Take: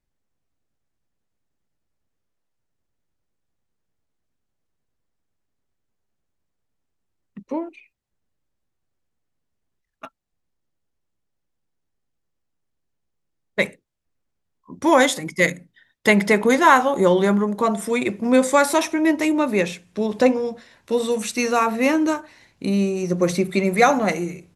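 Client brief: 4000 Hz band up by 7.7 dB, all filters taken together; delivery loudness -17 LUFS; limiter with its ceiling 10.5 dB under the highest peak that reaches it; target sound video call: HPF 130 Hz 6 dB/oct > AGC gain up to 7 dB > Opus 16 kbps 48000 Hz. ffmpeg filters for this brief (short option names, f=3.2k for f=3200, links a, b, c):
-af "equalizer=f=4k:t=o:g=9,alimiter=limit=-11dB:level=0:latency=1,highpass=f=130:p=1,dynaudnorm=m=7dB,volume=3.5dB" -ar 48000 -c:a libopus -b:a 16k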